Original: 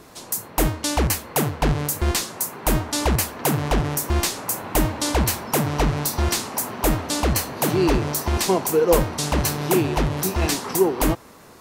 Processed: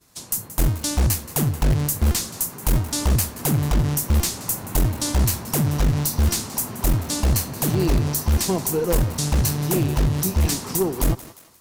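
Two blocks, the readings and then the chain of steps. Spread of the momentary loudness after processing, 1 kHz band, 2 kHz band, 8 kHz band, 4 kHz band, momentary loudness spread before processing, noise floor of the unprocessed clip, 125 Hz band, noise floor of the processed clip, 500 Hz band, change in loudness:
3 LU, −6.5 dB, −5.5 dB, +0.5 dB, −2.0 dB, 4 LU, −45 dBFS, +4.0 dB, −43 dBFS, −5.5 dB, 0.0 dB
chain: downward expander −36 dBFS
bass and treble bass +13 dB, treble +8 dB
in parallel at −11 dB: wrap-around overflow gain 5 dB
on the sum: tube saturation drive 4 dB, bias 0.4
on a send: feedback echo with a high-pass in the loop 176 ms, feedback 27%, high-pass 420 Hz, level −16 dB
on the sum: one half of a high-frequency compander encoder only
level −7 dB

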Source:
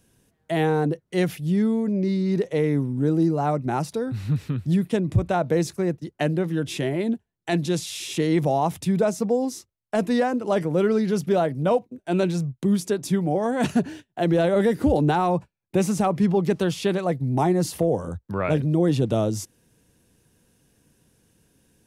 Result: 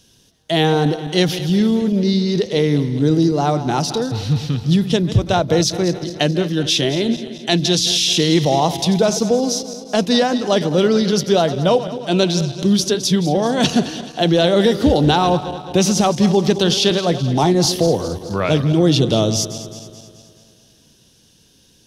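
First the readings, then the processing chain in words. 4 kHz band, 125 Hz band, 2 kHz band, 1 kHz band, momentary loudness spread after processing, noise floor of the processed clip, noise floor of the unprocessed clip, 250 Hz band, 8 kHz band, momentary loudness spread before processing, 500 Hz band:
+18.5 dB, +6.0 dB, +7.0 dB, +6.0 dB, 6 LU, −53 dBFS, −74 dBFS, +6.0 dB, +14.0 dB, 6 LU, +6.0 dB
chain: feedback delay that plays each chunk backwards 107 ms, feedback 73%, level −13 dB
flat-topped bell 4,300 Hz +13 dB 1.3 octaves
level +5.5 dB

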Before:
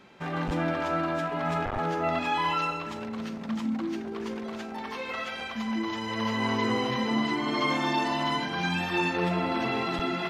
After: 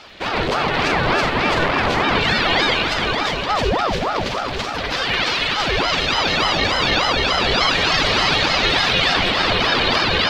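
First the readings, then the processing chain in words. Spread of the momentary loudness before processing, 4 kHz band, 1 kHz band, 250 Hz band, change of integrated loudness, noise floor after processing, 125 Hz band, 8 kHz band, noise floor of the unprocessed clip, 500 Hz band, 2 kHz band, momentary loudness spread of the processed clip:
9 LU, +18.5 dB, +9.5 dB, +3.0 dB, +11.5 dB, −25 dBFS, +8.5 dB, +16.0 dB, −37 dBFS, +10.0 dB, +14.0 dB, 6 LU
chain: octave-band graphic EQ 1,000/2,000/4,000 Hz −4/+4/+11 dB
in parallel at 0 dB: compressor whose output falls as the input rises −29 dBFS
on the sum: surface crackle 120 per second −49 dBFS
pitch vibrato 9.2 Hz 22 cents
echo with a time of its own for lows and highs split 2,800 Hz, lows 524 ms, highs 377 ms, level −4.5 dB
ring modulator whose carrier an LFO sweeps 610 Hz, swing 75%, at 3.4 Hz
level +5.5 dB

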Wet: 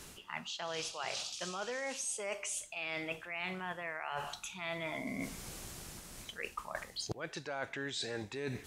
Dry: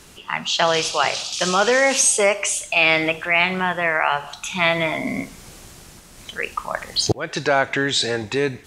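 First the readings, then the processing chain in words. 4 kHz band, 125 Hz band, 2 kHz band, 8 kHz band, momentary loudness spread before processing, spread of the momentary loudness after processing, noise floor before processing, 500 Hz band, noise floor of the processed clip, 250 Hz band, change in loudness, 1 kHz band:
−19.0 dB, −17.0 dB, −20.5 dB, −19.0 dB, 12 LU, 7 LU, −45 dBFS, −20.5 dB, −54 dBFS, −17.5 dB, −20.5 dB, −20.5 dB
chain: high-shelf EQ 9,600 Hz +5 dB
reversed playback
downward compressor 10 to 1, threshold −31 dBFS, peak gain reduction 19.5 dB
reversed playback
level −5.5 dB

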